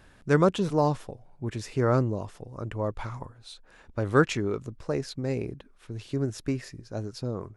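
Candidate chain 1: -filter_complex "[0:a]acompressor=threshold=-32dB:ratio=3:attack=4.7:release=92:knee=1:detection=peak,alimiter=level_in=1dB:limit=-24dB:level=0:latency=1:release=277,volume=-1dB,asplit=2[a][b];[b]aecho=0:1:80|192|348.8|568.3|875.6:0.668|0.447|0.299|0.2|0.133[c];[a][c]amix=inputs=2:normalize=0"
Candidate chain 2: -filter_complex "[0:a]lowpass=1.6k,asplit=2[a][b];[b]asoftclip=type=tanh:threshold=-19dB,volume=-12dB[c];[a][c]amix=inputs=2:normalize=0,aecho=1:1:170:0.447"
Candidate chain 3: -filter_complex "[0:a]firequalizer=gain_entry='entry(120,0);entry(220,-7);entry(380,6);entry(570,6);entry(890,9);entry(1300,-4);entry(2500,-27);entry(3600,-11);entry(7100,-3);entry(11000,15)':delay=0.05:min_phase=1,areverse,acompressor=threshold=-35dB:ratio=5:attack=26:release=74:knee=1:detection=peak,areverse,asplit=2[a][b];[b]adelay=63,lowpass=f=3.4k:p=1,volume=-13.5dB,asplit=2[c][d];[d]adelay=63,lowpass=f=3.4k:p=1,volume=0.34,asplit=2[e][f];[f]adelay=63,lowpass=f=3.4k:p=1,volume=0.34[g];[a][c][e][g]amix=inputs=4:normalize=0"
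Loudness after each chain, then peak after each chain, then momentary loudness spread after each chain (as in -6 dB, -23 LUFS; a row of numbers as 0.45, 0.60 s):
-36.0, -27.0, -36.5 LUFS; -20.5, -7.0, -19.0 dBFS; 6, 14, 8 LU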